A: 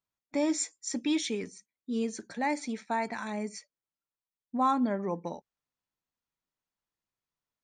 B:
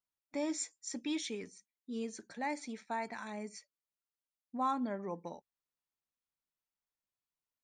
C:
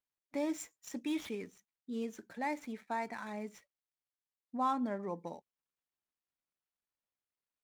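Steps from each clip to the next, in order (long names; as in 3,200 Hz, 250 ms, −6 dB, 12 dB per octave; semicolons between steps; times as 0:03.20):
parametric band 150 Hz −2.5 dB 2.8 octaves; level −6.5 dB
running median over 9 samples; tape wow and flutter 16 cents; level +1 dB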